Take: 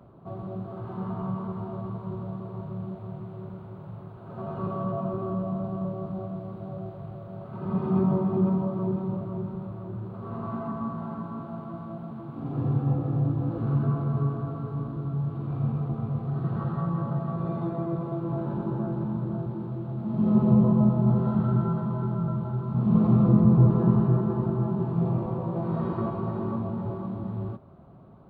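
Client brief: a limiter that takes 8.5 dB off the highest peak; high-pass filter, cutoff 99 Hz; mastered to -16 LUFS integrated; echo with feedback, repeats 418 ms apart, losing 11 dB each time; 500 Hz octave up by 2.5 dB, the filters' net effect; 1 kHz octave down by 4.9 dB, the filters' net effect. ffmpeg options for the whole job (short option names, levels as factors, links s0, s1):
-af "highpass=99,equalizer=f=500:t=o:g=6,equalizer=f=1000:t=o:g=-9,alimiter=limit=0.168:level=0:latency=1,aecho=1:1:418|836|1254:0.282|0.0789|0.0221,volume=4.22"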